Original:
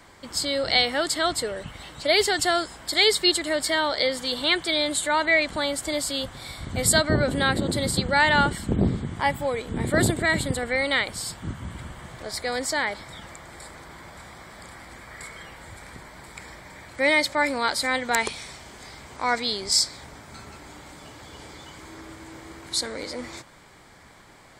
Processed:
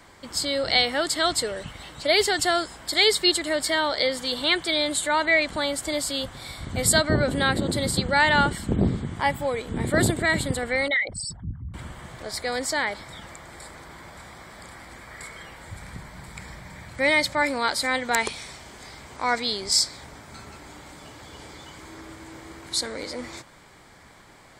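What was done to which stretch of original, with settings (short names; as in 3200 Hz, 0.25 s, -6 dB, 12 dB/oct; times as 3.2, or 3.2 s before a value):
1.18–1.73 bell 5500 Hz +4 dB 1.9 oct
10.88–11.74 formant sharpening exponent 3
15.71–17.42 resonant low shelf 230 Hz +6 dB, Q 1.5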